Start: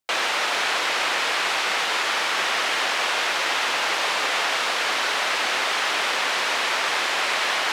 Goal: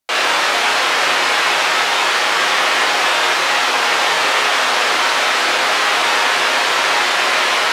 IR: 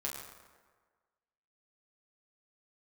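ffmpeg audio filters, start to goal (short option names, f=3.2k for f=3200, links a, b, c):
-filter_complex "[1:a]atrim=start_sample=2205,afade=t=out:st=0.18:d=0.01,atrim=end_sample=8379,asetrate=33075,aresample=44100[a];[0:a][a]afir=irnorm=-1:irlink=0,volume=5.5dB"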